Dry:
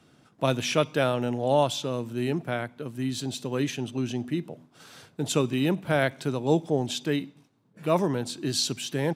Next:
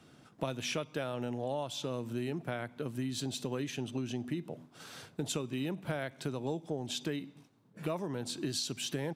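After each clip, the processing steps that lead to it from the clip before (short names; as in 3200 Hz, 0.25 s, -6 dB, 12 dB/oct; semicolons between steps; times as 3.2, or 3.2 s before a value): compressor 10:1, threshold -32 dBFS, peak gain reduction 15.5 dB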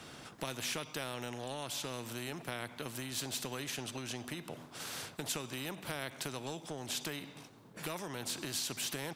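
spectral compressor 2:1; gain -1 dB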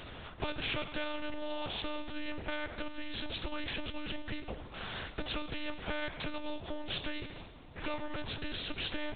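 Schroeder reverb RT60 1.9 s, combs from 29 ms, DRR 11.5 dB; monotone LPC vocoder at 8 kHz 300 Hz; gain +4.5 dB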